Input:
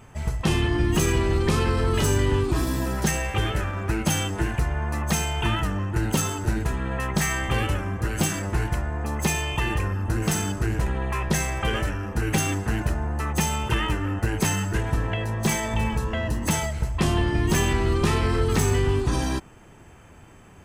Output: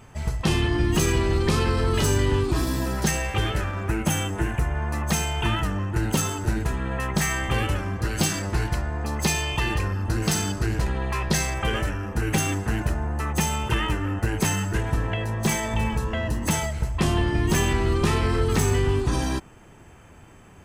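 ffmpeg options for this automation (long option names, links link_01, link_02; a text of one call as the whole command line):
ffmpeg -i in.wav -af "asetnsamples=nb_out_samples=441:pad=0,asendcmd='3.88 equalizer g -7;4.75 equalizer g 1;7.76 equalizer g 8;11.54 equalizer g 0',equalizer=frequency=4500:width_type=o:width=0.65:gain=3.5" out.wav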